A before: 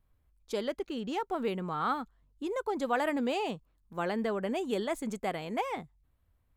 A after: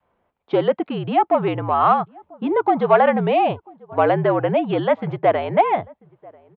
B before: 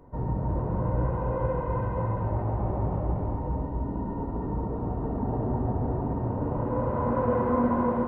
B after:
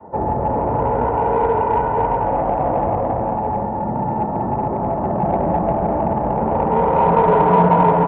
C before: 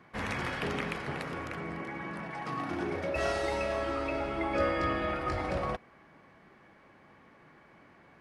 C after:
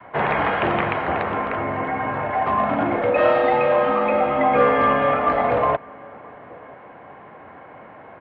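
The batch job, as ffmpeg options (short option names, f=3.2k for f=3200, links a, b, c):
-filter_complex "[0:a]equalizer=f=760:w=0.77:g=13,asplit=2[a][b];[b]adelay=991.3,volume=-27dB,highshelf=f=4k:g=-22.3[c];[a][c]amix=inputs=2:normalize=0,asplit=2[d][e];[e]asoftclip=type=tanh:threshold=-19.5dB,volume=-6dB[f];[d][f]amix=inputs=2:normalize=0,adynamicequalizer=threshold=0.0224:dfrequency=460:dqfactor=1.6:tfrequency=460:tqfactor=1.6:attack=5:release=100:ratio=0.375:range=3:mode=cutabove:tftype=bell,highpass=f=150:t=q:w=0.5412,highpass=f=150:t=q:w=1.307,lowpass=f=3.4k:t=q:w=0.5176,lowpass=f=3.4k:t=q:w=0.7071,lowpass=f=3.4k:t=q:w=1.932,afreqshift=-65,volume=4.5dB"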